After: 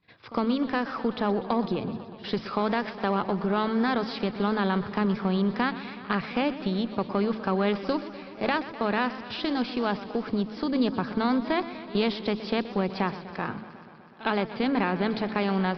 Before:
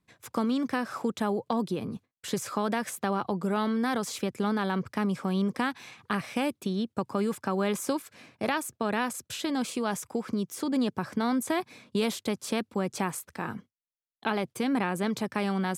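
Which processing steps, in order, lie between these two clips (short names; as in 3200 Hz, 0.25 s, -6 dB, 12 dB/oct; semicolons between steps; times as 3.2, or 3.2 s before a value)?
added harmonics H 8 -32 dB, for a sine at -13 dBFS; in parallel at -9 dB: one-sided clip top -32 dBFS; on the sum: de-hum 54.51 Hz, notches 6; on a send: reverse echo 58 ms -18 dB; on the sum: downsampling 11025 Hz; warbling echo 0.124 s, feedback 76%, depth 104 cents, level -15 dB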